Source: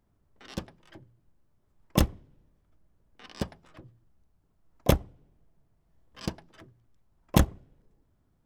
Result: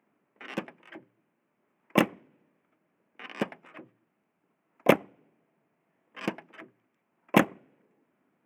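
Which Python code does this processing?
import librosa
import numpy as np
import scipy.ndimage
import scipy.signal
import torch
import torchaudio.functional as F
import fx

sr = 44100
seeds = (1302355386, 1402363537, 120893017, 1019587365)

y = scipy.signal.sosfilt(scipy.signal.butter(4, 210.0, 'highpass', fs=sr, output='sos'), x)
y = fx.high_shelf_res(y, sr, hz=3200.0, db=-9.5, q=3.0)
y = y * librosa.db_to_amplitude(4.5)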